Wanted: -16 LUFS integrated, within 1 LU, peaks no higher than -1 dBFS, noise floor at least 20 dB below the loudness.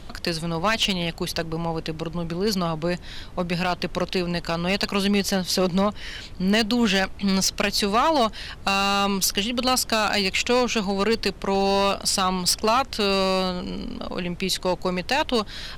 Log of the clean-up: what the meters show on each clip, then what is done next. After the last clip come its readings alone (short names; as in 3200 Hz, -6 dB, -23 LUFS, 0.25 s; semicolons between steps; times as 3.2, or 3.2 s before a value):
clipped 0.9%; flat tops at -14.0 dBFS; noise floor -39 dBFS; noise floor target -43 dBFS; loudness -23.0 LUFS; peak -14.0 dBFS; loudness target -16.0 LUFS
-> clip repair -14 dBFS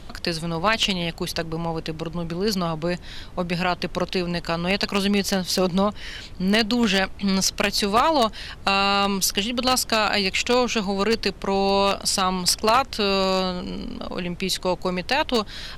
clipped 0.0%; noise floor -39 dBFS; noise floor target -43 dBFS
-> noise print and reduce 6 dB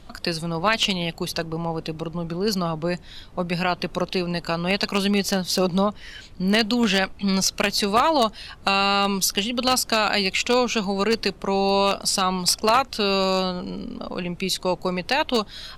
noise floor -44 dBFS; loudness -22.5 LUFS; peak -5.0 dBFS; loudness target -16.0 LUFS
-> gain +6.5 dB; limiter -1 dBFS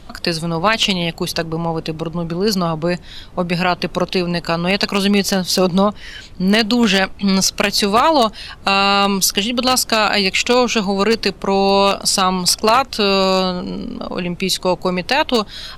loudness -16.5 LUFS; peak -1.0 dBFS; noise floor -37 dBFS